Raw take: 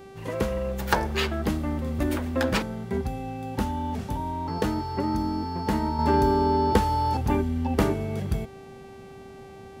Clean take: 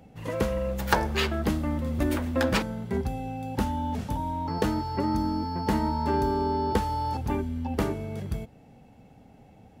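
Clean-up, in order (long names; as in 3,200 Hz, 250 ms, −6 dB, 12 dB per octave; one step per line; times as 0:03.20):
hum removal 389.4 Hz, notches 33
level correction −4.5 dB, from 0:05.99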